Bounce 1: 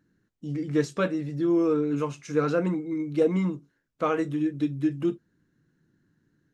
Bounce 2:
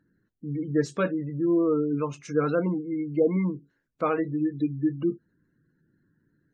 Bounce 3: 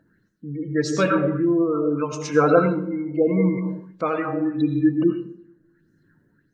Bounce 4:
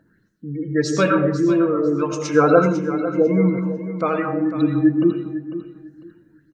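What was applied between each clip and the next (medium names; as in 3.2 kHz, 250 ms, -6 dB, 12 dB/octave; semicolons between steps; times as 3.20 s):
spectral gate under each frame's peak -30 dB strong
reverberation RT60 0.85 s, pre-delay 50 ms, DRR 5 dB; tremolo 0.82 Hz, depth 54%; sweeping bell 1.6 Hz 620–6300 Hz +12 dB; trim +6 dB
feedback delay 499 ms, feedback 22%, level -12 dB; trim +2.5 dB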